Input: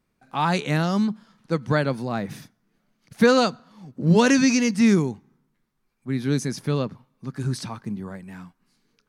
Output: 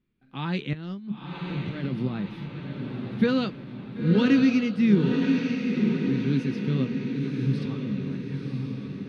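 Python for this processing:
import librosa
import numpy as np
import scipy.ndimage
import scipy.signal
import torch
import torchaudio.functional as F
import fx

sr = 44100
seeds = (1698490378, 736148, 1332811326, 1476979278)

p1 = fx.curve_eq(x, sr, hz=(350.0, 690.0, 3300.0, 7000.0), db=(0, -15, -1, -26))
p2 = fx.over_compress(p1, sr, threshold_db=-28.0, ratio=-0.5, at=(0.73, 2.08))
p3 = fx.doubler(p2, sr, ms=15.0, db=-12)
p4 = p3 + fx.echo_diffused(p3, sr, ms=993, feedback_pct=55, wet_db=-3.5, dry=0)
y = p4 * 10.0 ** (-2.5 / 20.0)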